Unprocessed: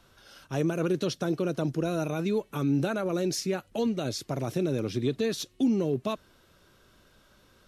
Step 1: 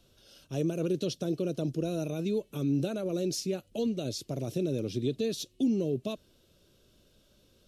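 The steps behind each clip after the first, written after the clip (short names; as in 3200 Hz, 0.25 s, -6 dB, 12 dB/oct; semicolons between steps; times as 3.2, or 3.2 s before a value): band shelf 1300 Hz -11.5 dB; gain -2.5 dB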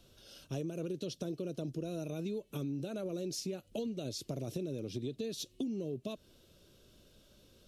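compressor, threshold -37 dBFS, peak gain reduction 13 dB; gain +1.5 dB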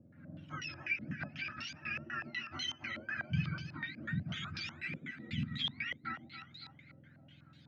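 spectrum mirrored in octaves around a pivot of 930 Hz; split-band echo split 570 Hz, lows 0.132 s, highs 0.279 s, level -7 dB; stepped low-pass 8.1 Hz 520–4000 Hz; gain -1.5 dB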